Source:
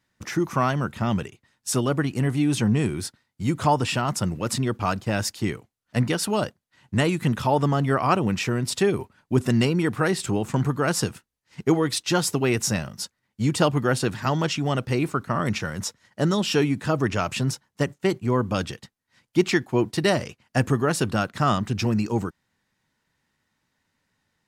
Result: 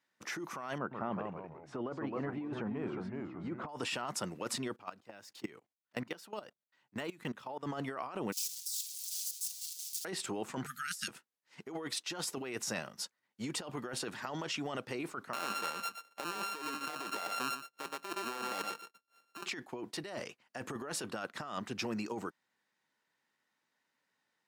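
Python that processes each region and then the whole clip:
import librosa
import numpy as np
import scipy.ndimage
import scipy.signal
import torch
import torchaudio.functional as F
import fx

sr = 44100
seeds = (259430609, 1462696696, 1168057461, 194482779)

y = fx.chain(x, sr, fx.lowpass(hz=1400.0, slope=12),
    fx.echo_pitch(ms=130, semitones=-2, count=3, db_per_echo=-6.0), at=(0.78, 3.69))
y = fx.chain(y, sr, fx.level_steps(step_db=22),
    fx.resample_linear(factor=2), at=(4.76, 7.63))
y = fx.chain(y, sr, fx.clip_1bit(),
    fx.cheby2_highpass(hz=1200.0, order=4, stop_db=70),
    fx.comb(ms=5.0, depth=0.76), at=(8.32, 10.05))
y = fx.chain(y, sr, fx.brickwall_bandstop(low_hz=250.0, high_hz=1200.0),
    fx.riaa(side='recording'), at=(10.66, 11.08))
y = fx.chain(y, sr, fx.sample_sort(block=32),
    fx.highpass(hz=280.0, slope=12),
    fx.echo_single(ms=119, db=-10.5), at=(15.33, 19.46))
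y = scipy.signal.sosfilt(scipy.signal.bessel(2, 400.0, 'highpass', norm='mag', fs=sr, output='sos'), y)
y = fx.high_shelf(y, sr, hz=4600.0, db=-4.5)
y = fx.over_compress(y, sr, threshold_db=-30.0, ratio=-1.0)
y = F.gain(torch.from_numpy(y), -8.5).numpy()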